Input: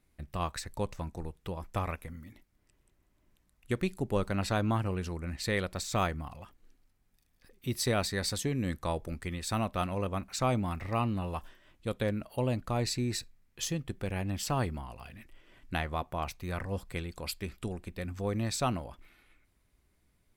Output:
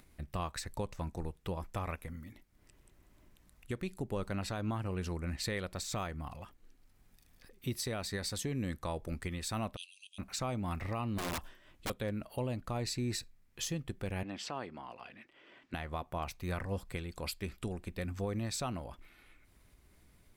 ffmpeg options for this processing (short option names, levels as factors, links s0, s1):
-filter_complex "[0:a]asplit=3[s0][s1][s2];[s0]afade=t=out:st=9.75:d=0.02[s3];[s1]asuperpass=centerf=5700:order=20:qfactor=0.73,afade=t=in:st=9.75:d=0.02,afade=t=out:st=10.18:d=0.02[s4];[s2]afade=t=in:st=10.18:d=0.02[s5];[s3][s4][s5]amix=inputs=3:normalize=0,asettb=1/sr,asplit=3[s6][s7][s8];[s6]atrim=end=11.184[s9];[s7]atrim=start=11.18:end=11.9,asetpts=PTS-STARTPTS,afade=t=in:d=0.004:c=qsin,afade=t=out:st=0.716:d=0.004:c=qsin,aeval=exprs='(mod(35.5*val(0)+1,2)-1)/35.5':c=same[s10];[s8]atrim=start=11.896[s11];[s9][s10]acrossfade=d=0.004:c1=hsin:c2=qsin[s12];[s12][s11]acrossfade=d=0.004:c1=qsin:c2=hsin,asettb=1/sr,asplit=3[s13][s14][s15];[s13]atrim=end=14.234[s16];[s14]atrim=start=14.23:end=15.74,asetpts=PTS-STARTPTS,afade=t=in:d=0.004:c=qsin,afade=t=out:st=1.506:d=0.004:c=qsin,highpass=270,lowpass=4200[s17];[s15]atrim=start=15.736[s18];[s16][s17]acrossfade=d=0.004:c1=hsin:c2=qsin[s19];[s19][s18]acrossfade=d=0.004:c1=qsin:c2=hsin,alimiter=level_in=1.33:limit=0.0631:level=0:latency=1:release=254,volume=0.75,acompressor=mode=upward:threshold=0.00224:ratio=2.5"